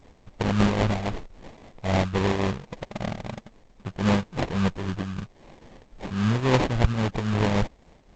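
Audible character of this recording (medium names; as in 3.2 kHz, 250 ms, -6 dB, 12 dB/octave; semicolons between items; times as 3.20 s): a quantiser's noise floor 10-bit, dither none; tremolo triangle 3.7 Hz, depth 60%; aliases and images of a low sample rate 1.4 kHz, jitter 20%; G.722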